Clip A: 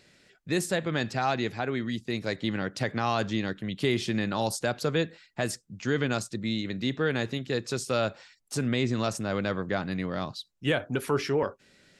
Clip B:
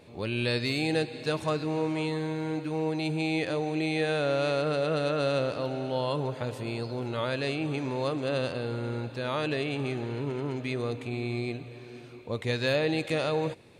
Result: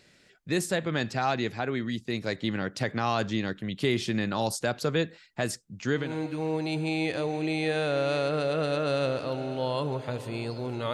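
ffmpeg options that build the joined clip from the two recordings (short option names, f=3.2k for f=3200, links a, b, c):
-filter_complex "[0:a]apad=whole_dur=10.93,atrim=end=10.93,atrim=end=6.17,asetpts=PTS-STARTPTS[a];[1:a]atrim=start=2.26:end=7.26,asetpts=PTS-STARTPTS[b];[a][b]acrossfade=d=0.24:c1=tri:c2=tri"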